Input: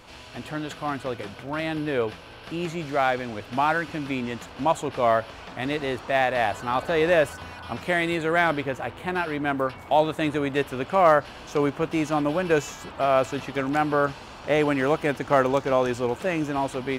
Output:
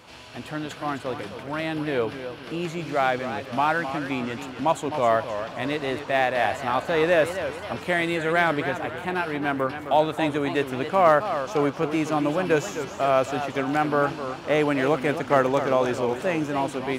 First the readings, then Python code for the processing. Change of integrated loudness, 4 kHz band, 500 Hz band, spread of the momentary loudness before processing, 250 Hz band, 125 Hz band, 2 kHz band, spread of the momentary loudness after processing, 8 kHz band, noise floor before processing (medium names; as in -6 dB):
+0.5 dB, +0.5 dB, +0.5 dB, 11 LU, +0.5 dB, 0.0 dB, +0.5 dB, 10 LU, +0.5 dB, -43 dBFS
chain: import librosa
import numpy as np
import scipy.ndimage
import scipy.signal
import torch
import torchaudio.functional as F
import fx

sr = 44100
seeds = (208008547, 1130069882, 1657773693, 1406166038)

y = scipy.signal.sosfilt(scipy.signal.butter(2, 82.0, 'highpass', fs=sr, output='sos'), x)
y = fx.echo_warbled(y, sr, ms=265, feedback_pct=46, rate_hz=2.8, cents=168, wet_db=-10.0)